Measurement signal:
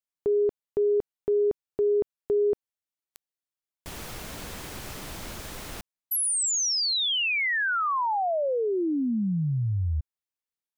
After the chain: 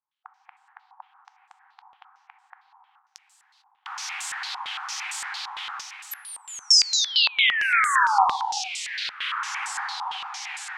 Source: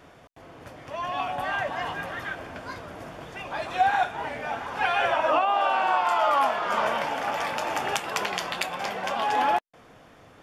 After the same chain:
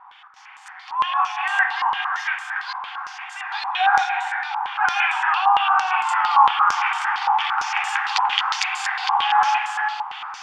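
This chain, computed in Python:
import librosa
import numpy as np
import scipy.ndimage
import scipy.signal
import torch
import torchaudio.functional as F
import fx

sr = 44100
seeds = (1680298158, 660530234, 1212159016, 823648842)

p1 = fx.brickwall_highpass(x, sr, low_hz=740.0)
p2 = fx.echo_diffused(p1, sr, ms=1737, feedback_pct=49, wet_db=-14.5)
p3 = fx.rev_gated(p2, sr, seeds[0], gate_ms=470, shape='flat', drr_db=4.0)
p4 = fx.rider(p3, sr, range_db=5, speed_s=2.0)
p5 = p3 + (p4 * 10.0 ** (1.5 / 20.0))
p6 = fx.filter_held_lowpass(p5, sr, hz=8.8, low_hz=980.0, high_hz=7800.0)
y = p6 * 10.0 ** (-5.5 / 20.0)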